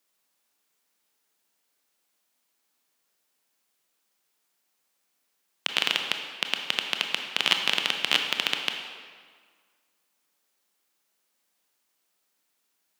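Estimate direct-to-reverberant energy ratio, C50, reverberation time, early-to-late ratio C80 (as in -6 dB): 4.0 dB, 5.0 dB, 1.7 s, 6.5 dB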